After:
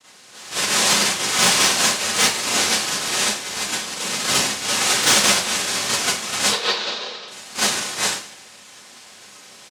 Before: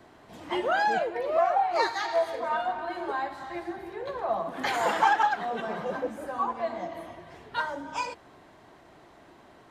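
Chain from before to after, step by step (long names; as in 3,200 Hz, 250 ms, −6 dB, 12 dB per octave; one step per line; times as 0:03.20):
in parallel at −3 dB: speech leveller within 4 dB 0.5 s
on the sum: cochlear-implant simulation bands 1
0:06.48–0:07.28: loudspeaker in its box 250–4,800 Hz, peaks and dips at 280 Hz −8 dB, 470 Hz +9 dB, 2,100 Hz −4 dB, 3,900 Hz +6 dB
gain into a clipping stage and back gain 11.5 dB
on a send: single-tap delay 199 ms −21.5 dB
on the sum: four-comb reverb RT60 0.32 s, combs from 30 ms, DRR −9.5 dB
level −6 dB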